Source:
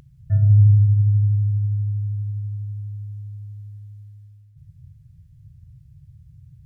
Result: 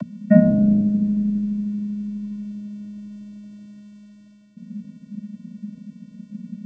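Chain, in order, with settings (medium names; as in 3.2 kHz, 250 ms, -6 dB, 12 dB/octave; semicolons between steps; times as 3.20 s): vocoder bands 16, square 207 Hz; trim -1 dB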